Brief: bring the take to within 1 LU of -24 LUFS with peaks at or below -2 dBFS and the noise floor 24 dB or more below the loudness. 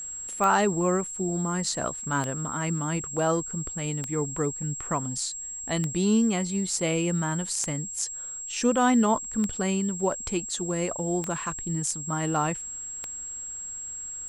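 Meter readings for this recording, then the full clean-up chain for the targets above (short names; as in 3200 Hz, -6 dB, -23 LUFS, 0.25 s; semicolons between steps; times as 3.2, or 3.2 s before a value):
clicks 8; steady tone 7600 Hz; tone level -34 dBFS; loudness -27.5 LUFS; peak -10.0 dBFS; loudness target -24.0 LUFS
-> de-click; notch 7600 Hz, Q 30; gain +3.5 dB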